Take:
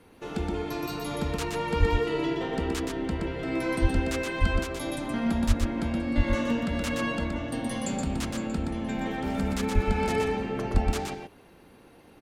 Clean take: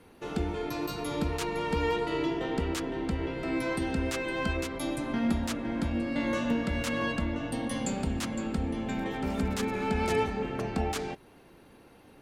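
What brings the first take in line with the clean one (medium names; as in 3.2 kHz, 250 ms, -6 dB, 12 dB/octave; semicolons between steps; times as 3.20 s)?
de-plosive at 1.79/3.81/4.40/5.47/6.16/9.74/10.73 s; inverse comb 122 ms -4 dB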